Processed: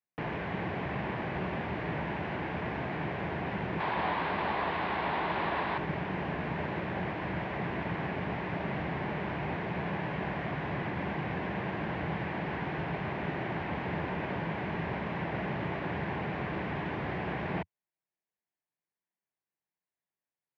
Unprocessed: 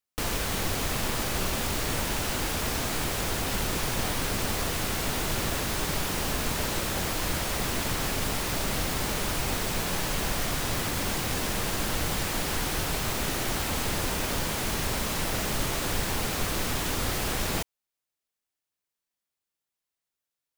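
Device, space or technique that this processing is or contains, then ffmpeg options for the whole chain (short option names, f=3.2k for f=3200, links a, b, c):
bass cabinet: -filter_complex "[0:a]highpass=f=87:w=0.5412,highpass=f=87:w=1.3066,equalizer=f=100:t=q:w=4:g=-8,equalizer=f=170:t=q:w=4:g=4,equalizer=f=250:t=q:w=4:g=-6,equalizer=f=500:t=q:w=4:g=-5,equalizer=f=1.3k:t=q:w=4:g=-10,lowpass=f=2.1k:w=0.5412,lowpass=f=2.1k:w=1.3066,asettb=1/sr,asplit=3[a][b][c];[a]atrim=end=3.804[d];[b]atrim=start=3.8:end=5.78,asetpts=PTS-STARTPTS,afade=t=in:d=0.004:c=qsin,afade=t=out:st=1.976:d=0.004:c=qsin,equalizer=f=125:t=o:w=1:g=-9,equalizer=f=1k:t=o:w=1:g=9,equalizer=f=4k:t=o:w=1:g=11,equalizer=f=8k:t=o:w=1:g=-6,equalizer=f=16k:t=o:w=1:g=-6[e];[c]atrim=start=5.776[f];[d][e]acrossfade=d=0.004:c1=hsin:c2=qsin[g];[g][f]acrossfade=d=0.004:c1=qsin:c2=hsin"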